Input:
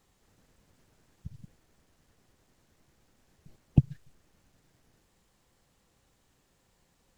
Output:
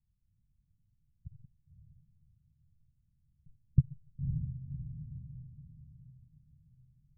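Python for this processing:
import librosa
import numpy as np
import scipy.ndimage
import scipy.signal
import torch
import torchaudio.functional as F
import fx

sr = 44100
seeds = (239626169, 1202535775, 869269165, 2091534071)

y = scipy.signal.sosfilt(scipy.signal.cheby2(4, 70, 670.0, 'lowpass', fs=sr, output='sos'), x)
y = fx.echo_diffused(y, sr, ms=553, feedback_pct=41, wet_db=-7.0)
y = fx.rider(y, sr, range_db=4, speed_s=2.0)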